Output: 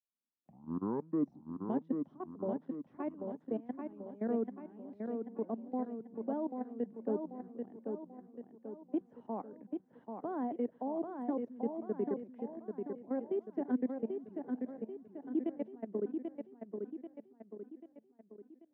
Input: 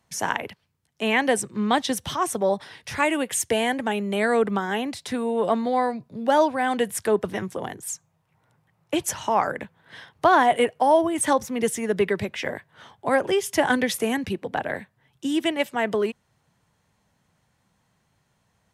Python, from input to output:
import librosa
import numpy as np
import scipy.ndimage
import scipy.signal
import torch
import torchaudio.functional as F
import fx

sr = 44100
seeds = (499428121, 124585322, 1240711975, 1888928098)

y = fx.tape_start_head(x, sr, length_s=1.88)
y = fx.level_steps(y, sr, step_db=22)
y = fx.ladder_bandpass(y, sr, hz=280.0, resonance_pct=50)
y = fx.echo_feedback(y, sr, ms=788, feedback_pct=48, wet_db=-5.0)
y = y * librosa.db_to_amplitude(1.5)